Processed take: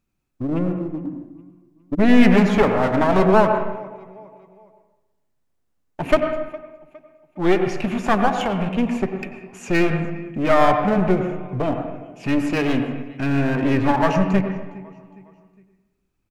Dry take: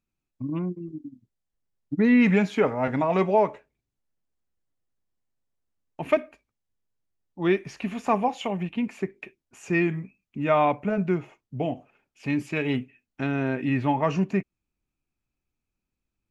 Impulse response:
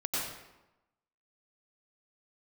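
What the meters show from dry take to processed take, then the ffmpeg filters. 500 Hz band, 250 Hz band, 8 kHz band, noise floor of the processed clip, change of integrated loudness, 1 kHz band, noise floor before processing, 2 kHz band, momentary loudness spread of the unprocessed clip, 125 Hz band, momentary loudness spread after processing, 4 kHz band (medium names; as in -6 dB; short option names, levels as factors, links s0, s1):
+6.0 dB, +6.0 dB, no reading, -70 dBFS, +5.5 dB, +6.5 dB, -85 dBFS, +6.0 dB, 15 LU, +6.0 dB, 16 LU, +8.5 dB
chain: -filter_complex "[0:a]aecho=1:1:411|822|1233:0.0631|0.0259|0.0106,aeval=exprs='clip(val(0),-1,0.0237)':c=same,asplit=2[s0][s1];[1:a]atrim=start_sample=2205,lowpass=2300[s2];[s1][s2]afir=irnorm=-1:irlink=0,volume=0.376[s3];[s0][s3]amix=inputs=2:normalize=0,volume=2.11"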